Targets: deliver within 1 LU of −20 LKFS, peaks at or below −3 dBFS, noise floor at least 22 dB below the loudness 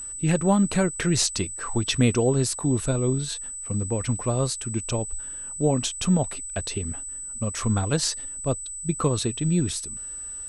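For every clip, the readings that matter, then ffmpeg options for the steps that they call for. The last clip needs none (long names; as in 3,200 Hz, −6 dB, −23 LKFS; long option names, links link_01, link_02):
interfering tone 8,000 Hz; level of the tone −33 dBFS; integrated loudness −25.0 LKFS; sample peak −9.0 dBFS; target loudness −20.0 LKFS
→ -af "bandreject=frequency=8000:width=30"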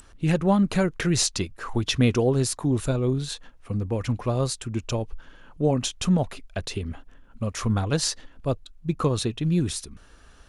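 interfering tone none found; integrated loudness −25.5 LKFS; sample peak −9.5 dBFS; target loudness −20.0 LKFS
→ -af "volume=5.5dB"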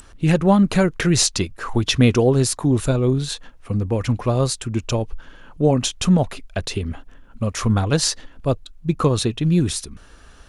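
integrated loudness −20.0 LKFS; sample peak −4.0 dBFS; background noise floor −47 dBFS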